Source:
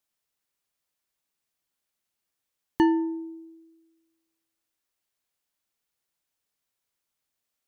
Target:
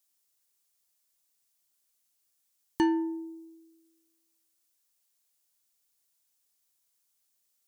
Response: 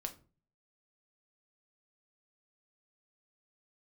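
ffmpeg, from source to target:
-filter_complex "[0:a]bass=f=250:g=-2,treble=f=4000:g=12,asplit=2[s0][s1];[s1]asoftclip=type=tanh:threshold=0.0841,volume=0.473[s2];[s0][s2]amix=inputs=2:normalize=0,volume=0.501"

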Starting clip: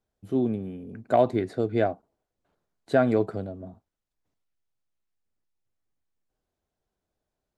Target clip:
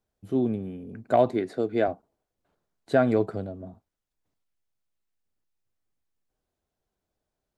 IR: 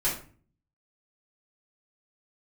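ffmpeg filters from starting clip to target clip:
-filter_complex "[0:a]asettb=1/sr,asplit=3[s0][s1][s2];[s0]atrim=end=1.324[s3];[s1]atrim=start=1.32:end=1.88,asetpts=PTS-STARTPTS,afade=t=in:d=0.004:c=qsin,afade=t=out:st=0.556:d=0.004:c=qsin,highpass=180[s4];[s2]atrim=start=1.876[s5];[s3][s4]acrossfade=d=0.004:c1=hsin:c2=qsin[s6];[s6][s5]acrossfade=d=0.004:c1=qsin:c2=hsin"

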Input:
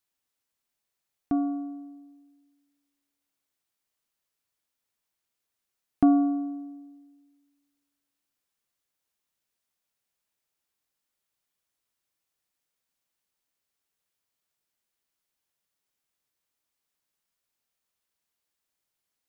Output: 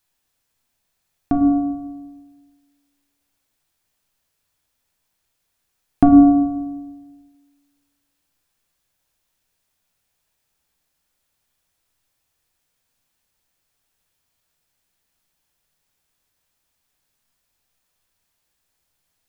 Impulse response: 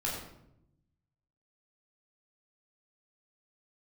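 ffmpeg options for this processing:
-filter_complex "[0:a]asplit=2[s0][s1];[1:a]atrim=start_sample=2205,lowshelf=f=130:g=11[s2];[s1][s2]afir=irnorm=-1:irlink=0,volume=0.376[s3];[s0][s3]amix=inputs=2:normalize=0,volume=2.37"

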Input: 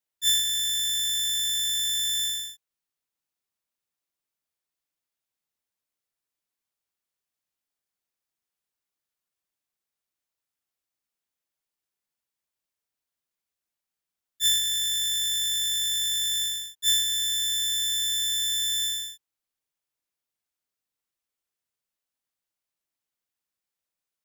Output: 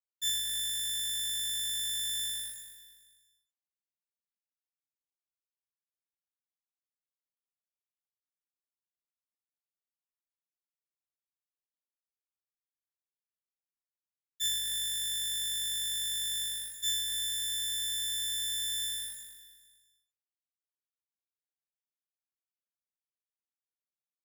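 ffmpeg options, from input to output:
-filter_complex "[0:a]asplit=2[s0][s1];[s1]aecho=0:1:20|78:0.126|0.282[s2];[s0][s2]amix=inputs=2:normalize=0,acrusher=bits=8:mix=0:aa=0.5,asplit=2[s3][s4];[s4]aecho=0:1:224|448|672|896:0.2|0.0778|0.0303|0.0118[s5];[s3][s5]amix=inputs=2:normalize=0,acompressor=threshold=0.0158:ratio=2"

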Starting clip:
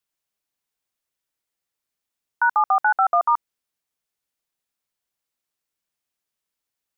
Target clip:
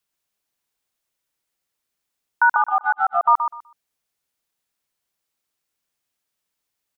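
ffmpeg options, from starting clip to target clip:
-filter_complex "[0:a]asplit=3[s0][s1][s2];[s0]afade=t=out:st=2.56:d=0.02[s3];[s1]agate=range=0.0398:threshold=0.158:ratio=16:detection=peak,afade=t=in:st=2.56:d=0.02,afade=t=out:st=3.26:d=0.02[s4];[s2]afade=t=in:st=3.26:d=0.02[s5];[s3][s4][s5]amix=inputs=3:normalize=0,asplit=2[s6][s7];[s7]aecho=0:1:125|250|375:0.398|0.0756|0.0144[s8];[s6][s8]amix=inputs=2:normalize=0,volume=1.5"

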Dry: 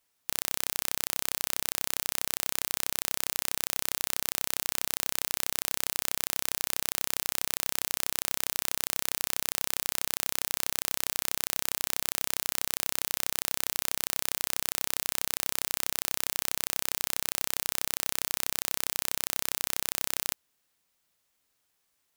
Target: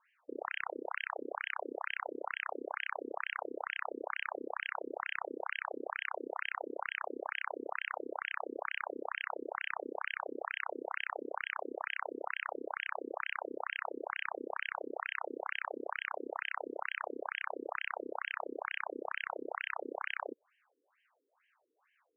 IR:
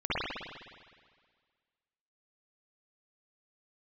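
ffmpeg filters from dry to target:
-filter_complex "[0:a]asplit=2[s0][s1];[s1]highpass=f=720:p=1,volume=3.98,asoftclip=type=tanh:threshold=0.841[s2];[s0][s2]amix=inputs=2:normalize=0,lowpass=f=1200:p=1,volume=0.501,afftfilt=real='re*between(b*sr/1024,340*pow(2300/340,0.5+0.5*sin(2*PI*2.2*pts/sr))/1.41,340*pow(2300/340,0.5+0.5*sin(2*PI*2.2*pts/sr))*1.41)':imag='im*between(b*sr/1024,340*pow(2300/340,0.5+0.5*sin(2*PI*2.2*pts/sr))/1.41,340*pow(2300/340,0.5+0.5*sin(2*PI*2.2*pts/sr))*1.41)':win_size=1024:overlap=0.75,volume=3.35"

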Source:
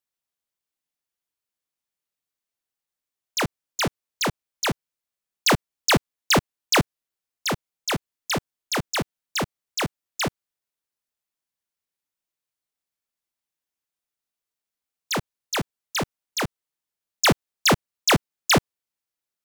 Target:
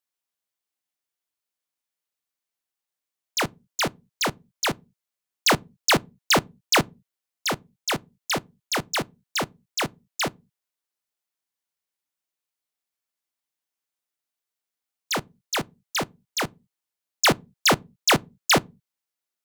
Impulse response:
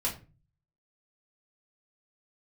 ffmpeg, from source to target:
-filter_complex "[0:a]lowshelf=f=170:g=-8.5,asplit=2[s0][s1];[1:a]atrim=start_sample=2205,afade=t=out:st=0.37:d=0.01,atrim=end_sample=16758,asetrate=66150,aresample=44100[s2];[s1][s2]afir=irnorm=-1:irlink=0,volume=0.0891[s3];[s0][s3]amix=inputs=2:normalize=0"

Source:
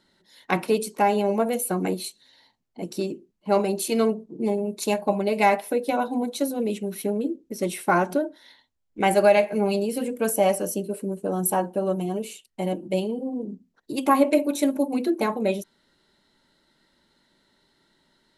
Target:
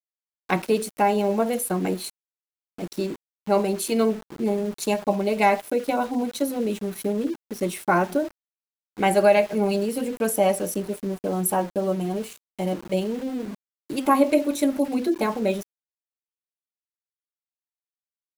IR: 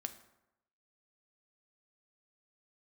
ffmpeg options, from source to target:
-af "lowshelf=f=77:g=8,aeval=exprs='val(0)*gte(abs(val(0)),0.0141)':c=same"

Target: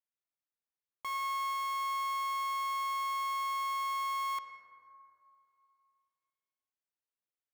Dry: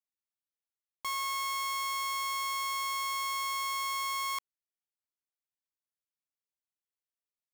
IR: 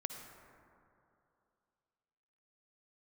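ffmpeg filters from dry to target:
-filter_complex "[0:a]asplit=2[s0][s1];[s1]lowshelf=f=220:g=-8.5[s2];[1:a]atrim=start_sample=2205,lowpass=3100[s3];[s2][s3]afir=irnorm=-1:irlink=0,volume=1.78[s4];[s0][s4]amix=inputs=2:normalize=0,volume=0.355"

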